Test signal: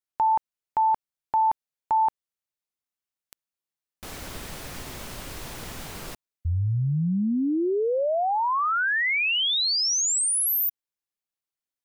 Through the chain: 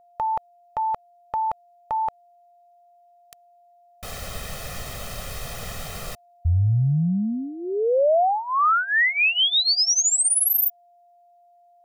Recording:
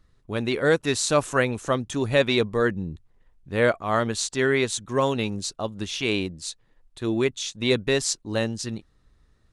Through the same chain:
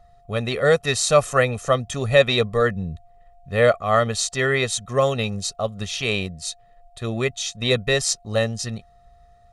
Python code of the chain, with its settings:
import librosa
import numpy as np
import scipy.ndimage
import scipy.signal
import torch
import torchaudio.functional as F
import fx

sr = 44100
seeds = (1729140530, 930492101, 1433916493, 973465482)

y = x + 0.77 * np.pad(x, (int(1.6 * sr / 1000.0), 0))[:len(x)]
y = y + 10.0 ** (-55.0 / 20.0) * np.sin(2.0 * np.pi * 700.0 * np.arange(len(y)) / sr)
y = y * librosa.db_to_amplitude(1.5)